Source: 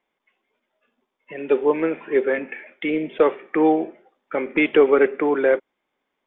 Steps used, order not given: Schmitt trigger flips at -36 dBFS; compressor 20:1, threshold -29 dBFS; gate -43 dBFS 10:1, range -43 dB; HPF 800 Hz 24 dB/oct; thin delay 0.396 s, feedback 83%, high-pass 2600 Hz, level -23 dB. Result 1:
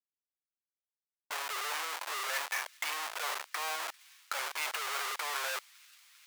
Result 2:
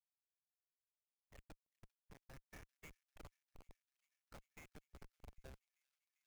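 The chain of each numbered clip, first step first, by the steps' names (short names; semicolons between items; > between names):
Schmitt trigger > compressor > HPF > gate > thin delay; compressor > HPF > Schmitt trigger > gate > thin delay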